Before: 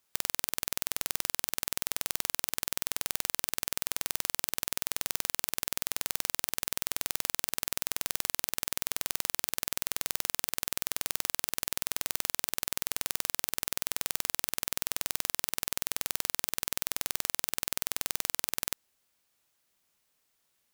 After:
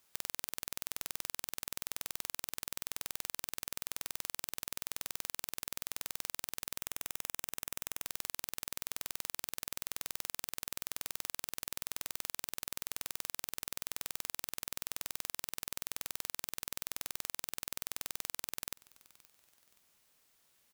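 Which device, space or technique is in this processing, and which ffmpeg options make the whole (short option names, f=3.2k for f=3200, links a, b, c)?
stacked limiters: -filter_complex "[0:a]asettb=1/sr,asplit=3[a][b][c];[a]atrim=end=6.784[d];[b]atrim=start=6.78:end=8.05,asetpts=PTS-STARTPTS,afade=t=in:d=0.004:c=qsin,afade=t=out:st=1.266:d=0.004:c=qsin,equalizer=f=4.4k:t=o:w=0.25:g=-10[e];[c]atrim=start=8.046[f];[d][e]acrossfade=d=0.004:c1=hsin:c2=qsin[g];[g][f]acrossfade=d=0.004:c1=qsin:c2=hsin,alimiter=limit=-7dB:level=0:latency=1:release=130,alimiter=limit=-13.5dB:level=0:latency=1:release=76,aecho=1:1:523|1046:0.075|0.027,volume=4dB"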